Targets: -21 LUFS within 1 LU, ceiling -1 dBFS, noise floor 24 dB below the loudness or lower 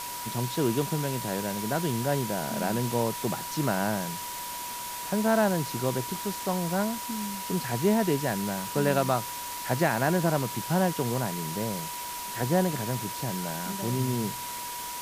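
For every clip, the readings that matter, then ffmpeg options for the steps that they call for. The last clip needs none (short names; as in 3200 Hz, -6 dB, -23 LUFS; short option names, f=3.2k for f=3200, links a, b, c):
steady tone 970 Hz; tone level -37 dBFS; noise floor -36 dBFS; noise floor target -53 dBFS; loudness -28.5 LUFS; peak -11.0 dBFS; loudness target -21.0 LUFS
-> -af "bandreject=f=970:w=30"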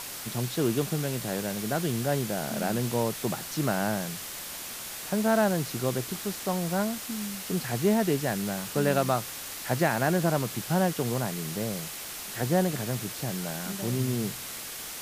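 steady tone none; noise floor -39 dBFS; noise floor target -53 dBFS
-> -af "afftdn=nr=14:nf=-39"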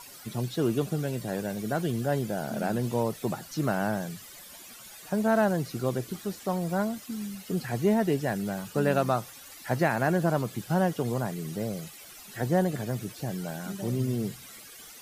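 noise floor -48 dBFS; noise floor target -54 dBFS
-> -af "afftdn=nr=6:nf=-48"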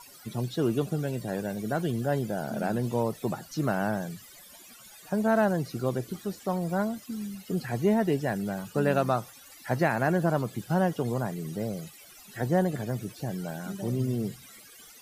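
noise floor -51 dBFS; noise floor target -54 dBFS
-> -af "afftdn=nr=6:nf=-51"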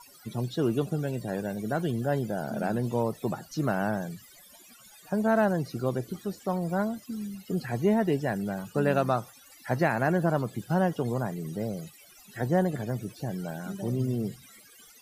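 noise floor -54 dBFS; loudness -29.5 LUFS; peak -12.0 dBFS; loudness target -21.0 LUFS
-> -af "volume=8.5dB"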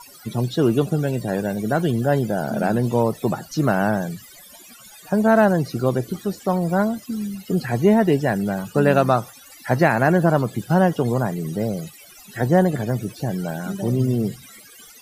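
loudness -21.0 LUFS; peak -3.5 dBFS; noise floor -46 dBFS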